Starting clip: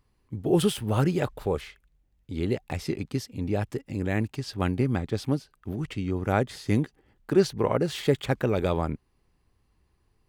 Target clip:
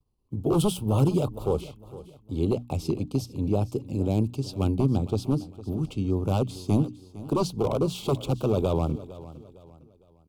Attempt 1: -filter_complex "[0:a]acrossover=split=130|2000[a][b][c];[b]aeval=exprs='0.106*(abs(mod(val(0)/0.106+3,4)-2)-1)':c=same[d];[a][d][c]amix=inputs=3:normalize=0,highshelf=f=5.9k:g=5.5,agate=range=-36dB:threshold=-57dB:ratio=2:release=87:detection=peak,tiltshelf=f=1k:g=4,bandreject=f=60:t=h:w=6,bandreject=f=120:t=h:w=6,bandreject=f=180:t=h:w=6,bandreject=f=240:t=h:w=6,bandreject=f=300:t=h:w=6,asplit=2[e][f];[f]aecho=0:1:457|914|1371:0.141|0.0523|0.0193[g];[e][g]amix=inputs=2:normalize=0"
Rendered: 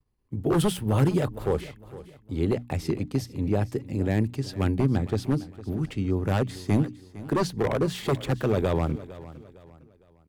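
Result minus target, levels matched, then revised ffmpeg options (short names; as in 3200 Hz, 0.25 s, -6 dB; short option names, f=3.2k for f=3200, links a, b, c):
2000 Hz band +11.5 dB
-filter_complex "[0:a]acrossover=split=130|2000[a][b][c];[b]aeval=exprs='0.106*(abs(mod(val(0)/0.106+3,4)-2)-1)':c=same[d];[a][d][c]amix=inputs=3:normalize=0,highshelf=f=5.9k:g=5.5,agate=range=-36dB:threshold=-57dB:ratio=2:release=87:detection=peak,asuperstop=centerf=1800:order=4:qfactor=1.2,tiltshelf=f=1k:g=4,bandreject=f=60:t=h:w=6,bandreject=f=120:t=h:w=6,bandreject=f=180:t=h:w=6,bandreject=f=240:t=h:w=6,bandreject=f=300:t=h:w=6,asplit=2[e][f];[f]aecho=0:1:457|914|1371:0.141|0.0523|0.0193[g];[e][g]amix=inputs=2:normalize=0"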